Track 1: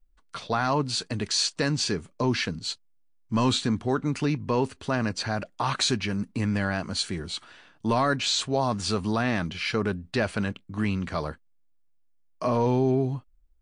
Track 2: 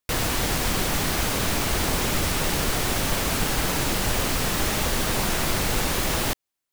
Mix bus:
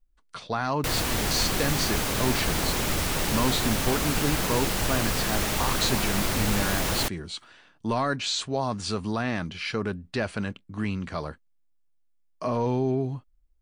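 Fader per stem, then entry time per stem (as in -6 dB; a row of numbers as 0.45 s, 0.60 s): -2.5 dB, -2.5 dB; 0.00 s, 0.75 s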